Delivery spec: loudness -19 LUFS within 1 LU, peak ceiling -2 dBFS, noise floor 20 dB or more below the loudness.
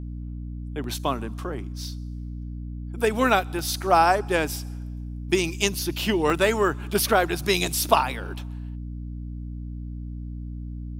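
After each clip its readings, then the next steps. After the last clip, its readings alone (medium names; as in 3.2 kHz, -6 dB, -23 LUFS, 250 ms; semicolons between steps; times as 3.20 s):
dropouts 4; longest dropout 1.6 ms; hum 60 Hz; highest harmonic 300 Hz; hum level -31 dBFS; loudness -24.0 LUFS; peak level -4.0 dBFS; loudness target -19.0 LUFS
-> interpolate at 0.84/3.59/4.56/6.30 s, 1.6 ms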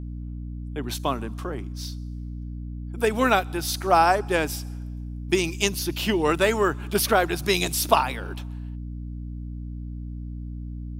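dropouts 0; hum 60 Hz; highest harmonic 300 Hz; hum level -31 dBFS
-> hum notches 60/120/180/240/300 Hz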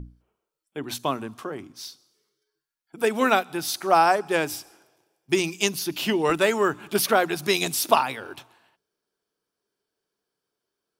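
hum not found; loudness -23.5 LUFS; peak level -4.0 dBFS; loudness target -19.0 LUFS
-> trim +4.5 dB; peak limiter -2 dBFS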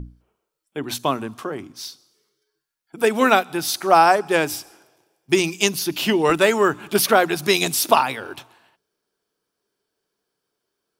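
loudness -19.0 LUFS; peak level -2.0 dBFS; noise floor -80 dBFS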